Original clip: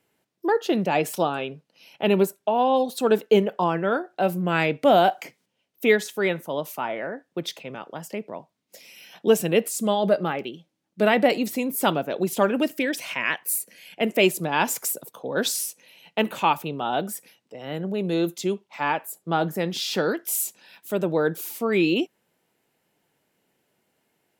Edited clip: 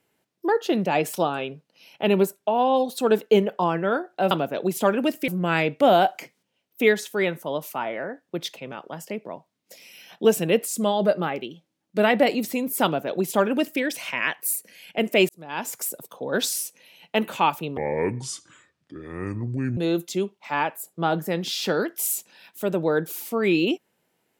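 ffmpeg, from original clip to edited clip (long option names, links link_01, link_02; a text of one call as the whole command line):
ffmpeg -i in.wav -filter_complex "[0:a]asplit=6[link_01][link_02][link_03][link_04][link_05][link_06];[link_01]atrim=end=4.312[link_07];[link_02]atrim=start=11.868:end=12.842[link_08];[link_03]atrim=start=4.308:end=14.32,asetpts=PTS-STARTPTS,afade=type=out:start_time=10.008:duration=0.004:curve=hsin[link_09];[link_04]atrim=start=14.32:end=16.804,asetpts=PTS-STARTPTS,afade=type=in:duration=0.73[link_10];[link_05]atrim=start=16.8:end=18.06,asetpts=PTS-STARTPTS,asetrate=27783,aresample=44100[link_11];[link_06]atrim=start=18.056[link_12];[link_07][link_08]acrossfade=duration=0.004:curve1=hsin:curve2=hsin[link_13];[link_09][link_10]concat=n=2:v=0:a=1[link_14];[link_13][link_14]acrossfade=duration=0.004:curve1=hsin:curve2=hsin[link_15];[link_15][link_11]acrossfade=duration=0.004:curve1=hsin:curve2=hsin[link_16];[link_16][link_12]acrossfade=duration=0.004:curve1=hsin:curve2=hsin" out.wav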